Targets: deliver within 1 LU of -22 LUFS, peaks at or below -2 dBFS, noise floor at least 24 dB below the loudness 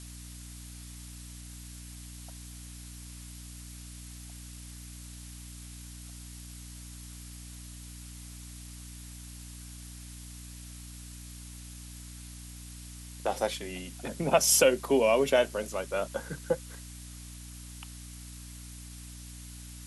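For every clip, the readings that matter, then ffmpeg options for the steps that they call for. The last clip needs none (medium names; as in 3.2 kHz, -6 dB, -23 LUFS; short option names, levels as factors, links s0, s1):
hum 60 Hz; highest harmonic 300 Hz; hum level -44 dBFS; noise floor -45 dBFS; noise floor target -52 dBFS; loudness -27.5 LUFS; peak level -9.5 dBFS; loudness target -22.0 LUFS
-> -af "bandreject=f=60:t=h:w=4,bandreject=f=120:t=h:w=4,bandreject=f=180:t=h:w=4,bandreject=f=240:t=h:w=4,bandreject=f=300:t=h:w=4"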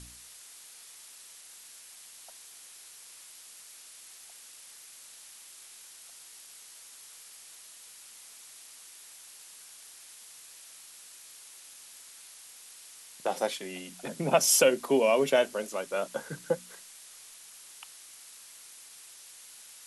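hum not found; noise floor -51 dBFS; noise floor target -52 dBFS
-> -af "afftdn=nr=6:nf=-51"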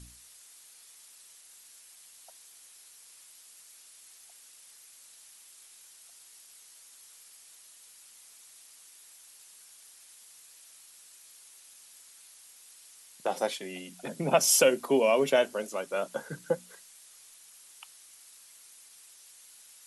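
noise floor -55 dBFS; loudness -27.5 LUFS; peak level -9.5 dBFS; loudness target -22.0 LUFS
-> -af "volume=1.88"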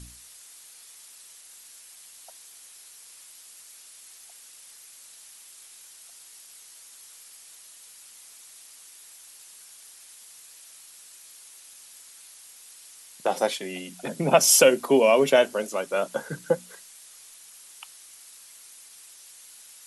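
loudness -22.0 LUFS; peak level -4.0 dBFS; noise floor -49 dBFS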